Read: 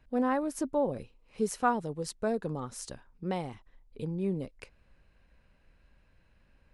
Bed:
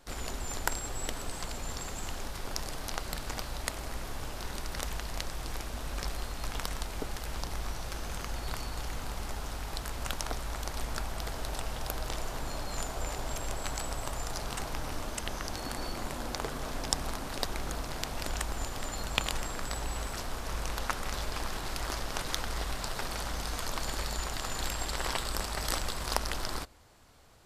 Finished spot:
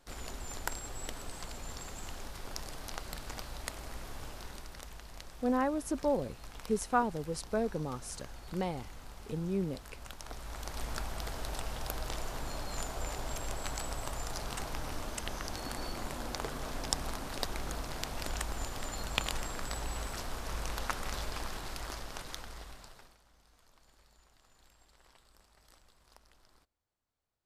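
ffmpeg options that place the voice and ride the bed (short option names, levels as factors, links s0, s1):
-filter_complex "[0:a]adelay=5300,volume=0.841[s0];[1:a]volume=1.58,afade=t=out:st=4.28:d=0.53:silence=0.473151,afade=t=in:st=10.19:d=0.71:silence=0.334965,afade=t=out:st=21.14:d=2.04:silence=0.0398107[s1];[s0][s1]amix=inputs=2:normalize=0"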